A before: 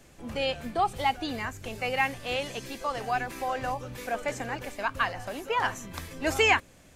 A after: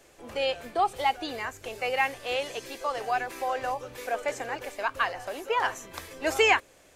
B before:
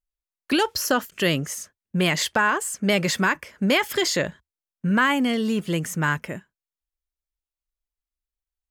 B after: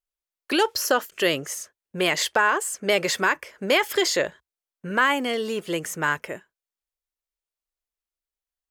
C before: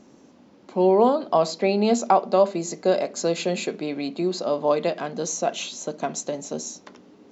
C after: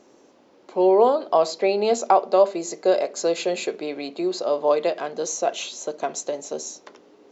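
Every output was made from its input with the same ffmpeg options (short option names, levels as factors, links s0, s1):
-af "lowshelf=f=290:t=q:w=1.5:g=-9"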